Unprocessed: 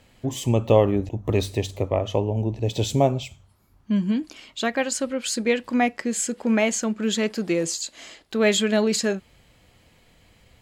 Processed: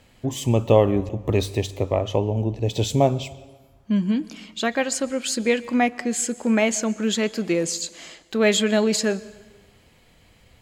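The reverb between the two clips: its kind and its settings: plate-style reverb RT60 1.3 s, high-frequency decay 0.8×, pre-delay 110 ms, DRR 19.5 dB; trim +1 dB

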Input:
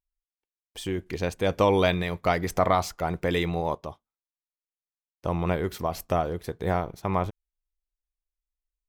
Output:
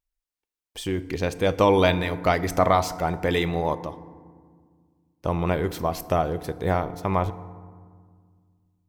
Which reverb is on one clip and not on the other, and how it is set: FDN reverb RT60 1.8 s, low-frequency decay 1.55×, high-frequency decay 0.45×, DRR 13.5 dB; trim +2.5 dB

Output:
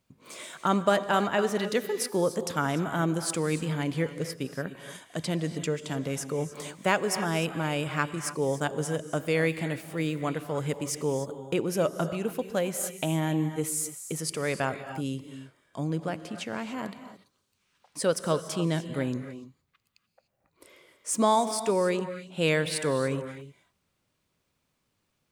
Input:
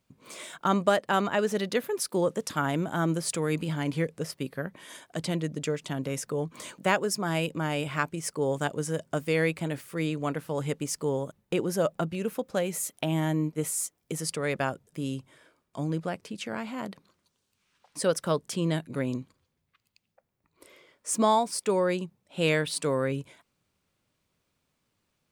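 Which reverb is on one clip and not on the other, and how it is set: gated-style reverb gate 320 ms rising, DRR 9.5 dB

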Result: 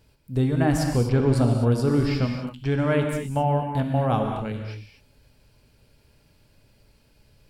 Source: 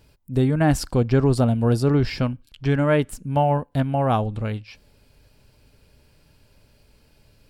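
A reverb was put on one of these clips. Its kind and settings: gated-style reverb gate 280 ms flat, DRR 2.5 dB; trim -4 dB

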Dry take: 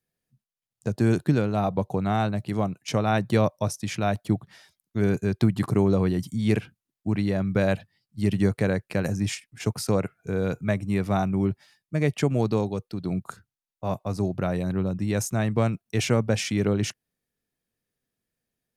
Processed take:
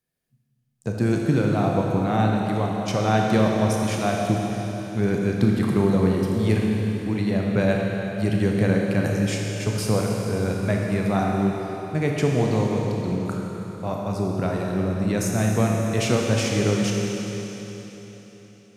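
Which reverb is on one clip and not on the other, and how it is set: Schroeder reverb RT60 3.9 s, combs from 25 ms, DRR -1 dB

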